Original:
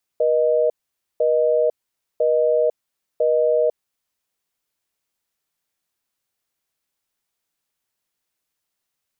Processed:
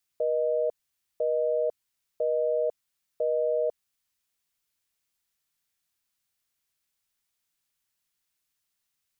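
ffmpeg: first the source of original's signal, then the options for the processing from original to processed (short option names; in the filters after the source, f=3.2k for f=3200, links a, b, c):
-f lavfi -i "aevalsrc='0.133*(sin(2*PI*480*t)+sin(2*PI*620*t))*clip(min(mod(t,1),0.5-mod(t,1))/0.005,0,1)':d=3.61:s=44100"
-af "equalizer=f=500:t=o:w=2.5:g=-8.5"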